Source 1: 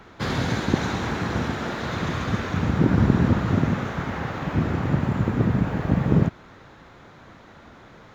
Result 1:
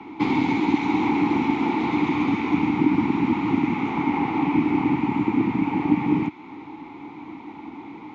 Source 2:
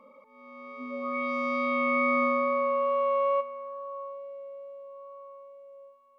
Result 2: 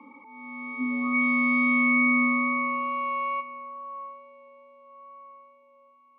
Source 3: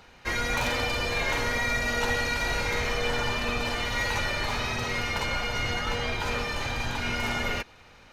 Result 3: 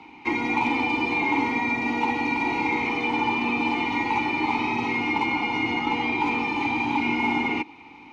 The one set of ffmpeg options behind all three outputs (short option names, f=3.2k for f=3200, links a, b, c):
-filter_complex "[0:a]acrossover=split=100|1100[a][b][c];[a]acompressor=threshold=-43dB:ratio=4[d];[b]acompressor=threshold=-30dB:ratio=4[e];[c]acompressor=threshold=-33dB:ratio=4[f];[d][e][f]amix=inputs=3:normalize=0,apsyclip=21dB,asplit=3[g][h][i];[g]bandpass=f=300:t=q:w=8,volume=0dB[j];[h]bandpass=f=870:t=q:w=8,volume=-6dB[k];[i]bandpass=f=2.24k:t=q:w=8,volume=-9dB[l];[j][k][l]amix=inputs=3:normalize=0"